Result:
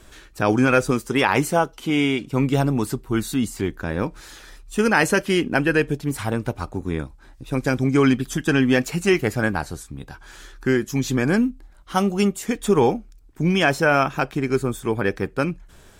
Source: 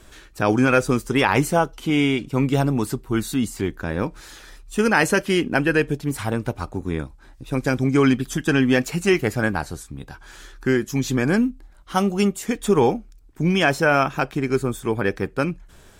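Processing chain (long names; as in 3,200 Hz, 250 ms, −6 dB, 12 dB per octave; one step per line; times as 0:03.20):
0:00.91–0:02.29: low-shelf EQ 93 Hz −9.5 dB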